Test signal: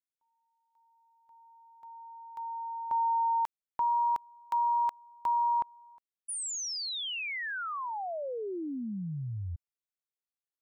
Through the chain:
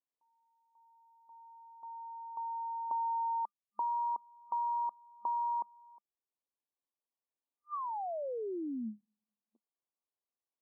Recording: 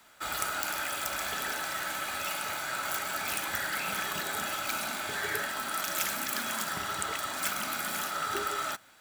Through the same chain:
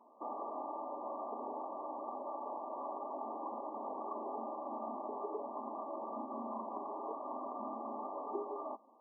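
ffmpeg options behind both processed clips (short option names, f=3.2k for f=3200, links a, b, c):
-af "afftfilt=real='re*between(b*sr/4096,210,1200)':imag='im*between(b*sr/4096,210,1200)':win_size=4096:overlap=0.75,acompressor=threshold=-42dB:ratio=2:attack=36:release=683:knee=6:detection=rms,volume=2.5dB"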